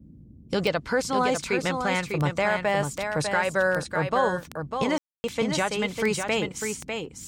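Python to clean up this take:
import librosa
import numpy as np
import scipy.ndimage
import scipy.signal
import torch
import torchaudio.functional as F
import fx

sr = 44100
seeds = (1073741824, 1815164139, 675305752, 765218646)

y = fx.fix_declick_ar(x, sr, threshold=10.0)
y = fx.fix_ambience(y, sr, seeds[0], print_start_s=0.0, print_end_s=0.5, start_s=4.98, end_s=5.24)
y = fx.noise_reduce(y, sr, print_start_s=0.0, print_end_s=0.5, reduce_db=24.0)
y = fx.fix_echo_inverse(y, sr, delay_ms=599, level_db=-6.0)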